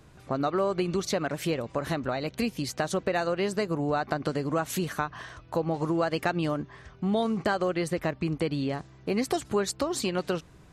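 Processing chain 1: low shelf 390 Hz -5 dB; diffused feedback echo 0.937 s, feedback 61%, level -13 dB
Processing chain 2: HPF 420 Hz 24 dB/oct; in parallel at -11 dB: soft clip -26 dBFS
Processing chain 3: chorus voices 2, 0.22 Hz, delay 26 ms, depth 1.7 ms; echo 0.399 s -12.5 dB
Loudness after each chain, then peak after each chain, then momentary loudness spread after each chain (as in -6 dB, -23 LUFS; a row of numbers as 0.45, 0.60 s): -31.0, -30.5, -32.0 LUFS; -13.0, -13.5, -15.0 dBFS; 5, 7, 6 LU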